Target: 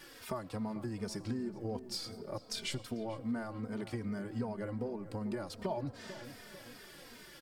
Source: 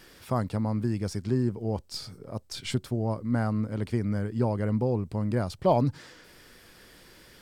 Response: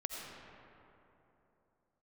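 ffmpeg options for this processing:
-filter_complex "[0:a]equalizer=f=68:t=o:w=2.3:g=-12.5,acompressor=threshold=-35dB:ratio=6,asplit=2[a][b];[b]adelay=444,lowpass=f=1.5k:p=1,volume=-13dB,asplit=2[c][d];[d]adelay=444,lowpass=f=1.5k:p=1,volume=0.53,asplit=2[e][f];[f]adelay=444,lowpass=f=1.5k:p=1,volume=0.53,asplit=2[g][h];[h]adelay=444,lowpass=f=1.5k:p=1,volume=0.53,asplit=2[i][j];[j]adelay=444,lowpass=f=1.5k:p=1,volume=0.53[k];[a][c][e][g][i][k]amix=inputs=6:normalize=0,asplit=2[l][m];[1:a]atrim=start_sample=2205[n];[m][n]afir=irnorm=-1:irlink=0,volume=-14dB[o];[l][o]amix=inputs=2:normalize=0,asplit=2[p][q];[q]adelay=3,afreqshift=-2.6[r];[p][r]amix=inputs=2:normalize=1,volume=2dB"

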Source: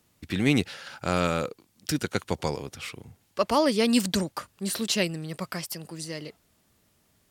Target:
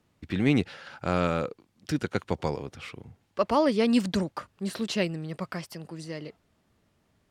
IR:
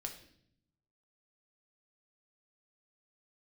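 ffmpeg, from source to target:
-af "aemphasis=mode=reproduction:type=75kf"

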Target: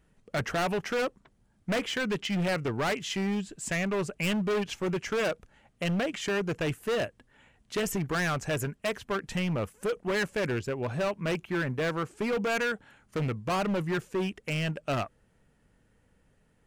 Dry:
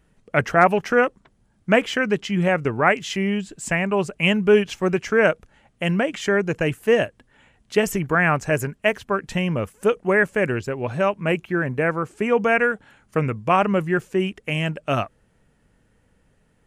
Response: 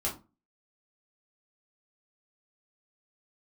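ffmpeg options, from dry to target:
-filter_complex "[0:a]asettb=1/sr,asplit=3[a][b][c];[a]atrim=end=2.104[d];[b]atrim=start=2.1:end=2.65,asetpts=PTS-STARTPTS,afade=t=in:d=0.004:c=qsin,afade=t=out:st=0.546:d=0.004:c=qsin,equalizer=f=2.5k:t=o:w=1.2:g=4.5[e];[c]atrim=start=2.646[f];[d][e]acrossfade=d=0.004:c1=hsin:c2=qsin[g];[g][f]acrossfade=d=0.004:c1=qsin:c2=hsin,volume=21dB,asoftclip=hard,volume=-21dB,volume=-4.5dB"

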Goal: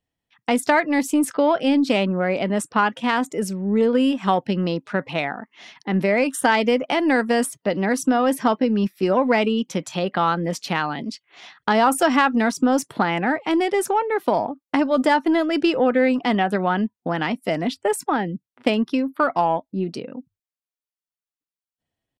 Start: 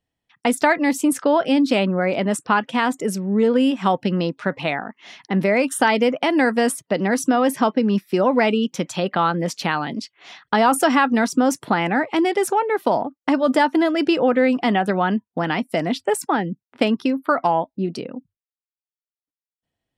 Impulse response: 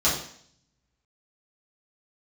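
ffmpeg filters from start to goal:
-af "atempo=0.9,aeval=exprs='0.708*(cos(1*acos(clip(val(0)/0.708,-1,1)))-cos(1*PI/2))+0.112*(cos(2*acos(clip(val(0)/0.708,-1,1)))-cos(2*PI/2))+0.0398*(cos(4*acos(clip(val(0)/0.708,-1,1)))-cos(4*PI/2))+0.00794*(cos(7*acos(clip(val(0)/0.708,-1,1)))-cos(7*PI/2))':c=same,volume=-1dB"

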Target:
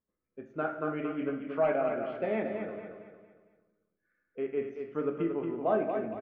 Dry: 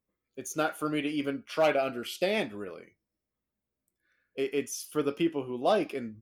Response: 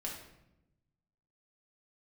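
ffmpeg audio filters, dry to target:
-filter_complex "[0:a]lowpass=f=1.9k:w=0.5412,lowpass=f=1.9k:w=1.3066,aecho=1:1:228|456|684|912|1140:0.473|0.185|0.072|0.0281|0.0109,asplit=2[a][b];[1:a]atrim=start_sample=2205[c];[b][c]afir=irnorm=-1:irlink=0,volume=-1dB[d];[a][d]amix=inputs=2:normalize=0,volume=-7.5dB"

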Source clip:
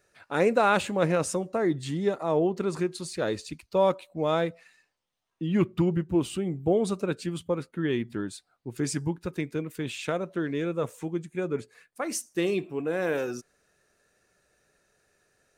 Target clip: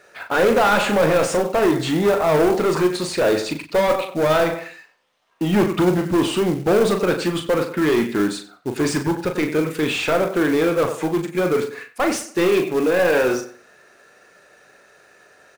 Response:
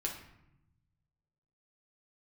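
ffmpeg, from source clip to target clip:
-filter_complex "[0:a]asplit=2[a][b];[b]adelay=94,lowpass=f=4.2k:p=1,volume=-15.5dB,asplit=2[c][d];[d]adelay=94,lowpass=f=4.2k:p=1,volume=0.27,asplit=2[e][f];[f]adelay=94,lowpass=f=4.2k:p=1,volume=0.27[g];[a][c][e][g]amix=inputs=4:normalize=0,asplit=2[h][i];[i]highpass=f=720:p=1,volume=28dB,asoftclip=type=tanh:threshold=-9dB[j];[h][j]amix=inputs=2:normalize=0,lowpass=f=1.8k:p=1,volume=-6dB,asplit=2[k][l];[l]adelay=39,volume=-7dB[m];[k][m]amix=inputs=2:normalize=0,acrusher=bits=5:mode=log:mix=0:aa=0.000001"

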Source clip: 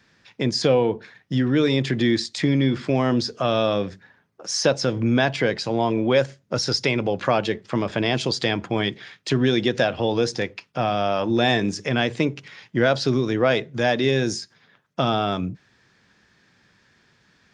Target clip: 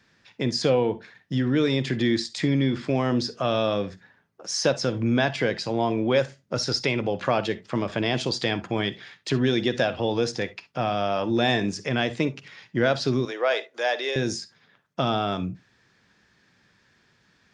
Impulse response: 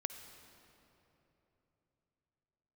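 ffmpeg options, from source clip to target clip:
-filter_complex "[0:a]asettb=1/sr,asplit=3[a][b][c];[a]atrim=end=13.254[d];[b]atrim=start=13.25:end=14.16,asetpts=PTS-STARTPTS,afade=t=in:d=0.004:c=qsin,afade=t=out:st=0.906:d=0.004:c=qsin,highpass=f=460:w=0.5412,highpass=f=460:w=1.3066[e];[c]atrim=start=14.156[f];[d][e]acrossfade=d=0.004:c1=hsin:c2=qsin[g];[g][f]acrossfade=d=0.004:c1=qsin:c2=hsin[h];[1:a]atrim=start_sample=2205,atrim=end_sample=3969,asetrate=52920,aresample=44100[i];[h][i]afir=irnorm=-1:irlink=0"

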